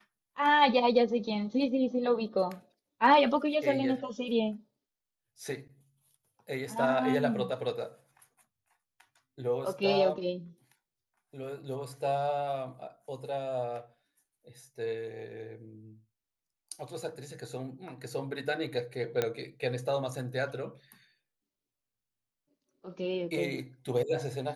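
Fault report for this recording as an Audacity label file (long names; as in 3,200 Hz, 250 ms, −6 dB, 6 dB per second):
19.220000	19.220000	click −14 dBFS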